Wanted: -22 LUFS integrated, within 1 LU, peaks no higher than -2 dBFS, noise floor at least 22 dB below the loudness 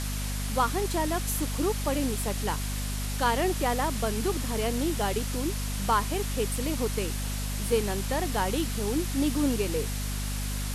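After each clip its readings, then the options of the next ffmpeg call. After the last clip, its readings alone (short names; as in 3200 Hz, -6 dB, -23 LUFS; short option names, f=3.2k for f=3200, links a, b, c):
hum 50 Hz; harmonics up to 250 Hz; hum level -29 dBFS; noise floor -31 dBFS; noise floor target -51 dBFS; loudness -28.5 LUFS; peak -12.0 dBFS; loudness target -22.0 LUFS
-> -af "bandreject=f=50:t=h:w=4,bandreject=f=100:t=h:w=4,bandreject=f=150:t=h:w=4,bandreject=f=200:t=h:w=4,bandreject=f=250:t=h:w=4"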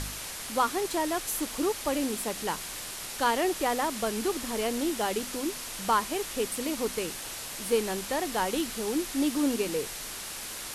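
hum none; noise floor -39 dBFS; noise floor target -52 dBFS
-> -af "afftdn=nr=13:nf=-39"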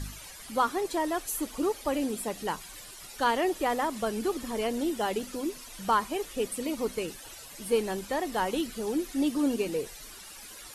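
noise floor -46 dBFS; noise floor target -53 dBFS
-> -af "afftdn=nr=7:nf=-46"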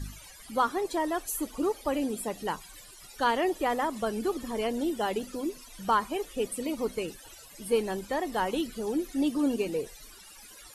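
noise floor -50 dBFS; noise floor target -53 dBFS
-> -af "afftdn=nr=6:nf=-50"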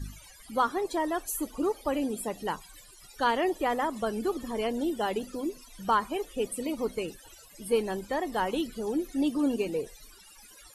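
noise floor -53 dBFS; loudness -30.5 LUFS; peak -13.0 dBFS; loudness target -22.0 LUFS
-> -af "volume=8.5dB"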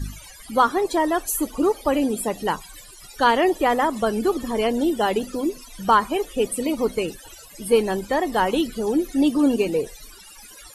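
loudness -22.0 LUFS; peak -4.5 dBFS; noise floor -45 dBFS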